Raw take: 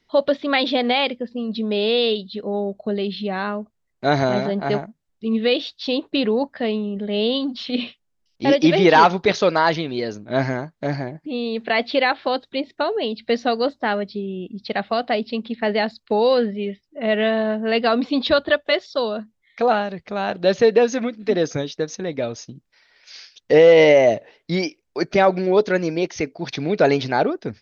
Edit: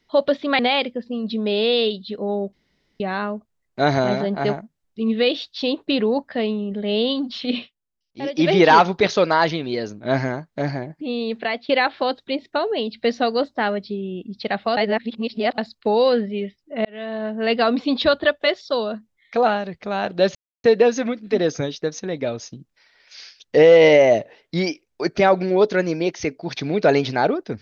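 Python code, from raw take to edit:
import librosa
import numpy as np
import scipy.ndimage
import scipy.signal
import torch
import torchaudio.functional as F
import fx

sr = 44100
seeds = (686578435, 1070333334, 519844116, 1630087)

y = fx.edit(x, sr, fx.cut(start_s=0.59, length_s=0.25),
    fx.room_tone_fill(start_s=2.78, length_s=0.47),
    fx.fade_down_up(start_s=7.82, length_s=0.92, db=-11.0, fade_s=0.16),
    fx.fade_out_to(start_s=11.58, length_s=0.36, floor_db=-17.0),
    fx.reverse_span(start_s=15.02, length_s=0.81),
    fx.fade_in_span(start_s=17.1, length_s=0.67),
    fx.insert_silence(at_s=20.6, length_s=0.29), tone=tone)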